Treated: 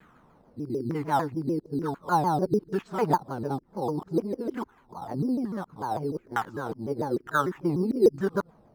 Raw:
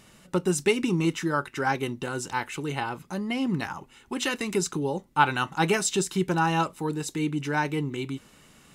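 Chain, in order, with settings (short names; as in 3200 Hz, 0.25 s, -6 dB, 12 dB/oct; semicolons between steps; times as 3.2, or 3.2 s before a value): whole clip reversed; LFO low-pass saw down 1.1 Hz 340–1600 Hz; in parallel at -11 dB: sample-rate reducer 4900 Hz, jitter 0%; on the sum: shaped vibrato saw down 6.7 Hz, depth 250 cents; gain -5 dB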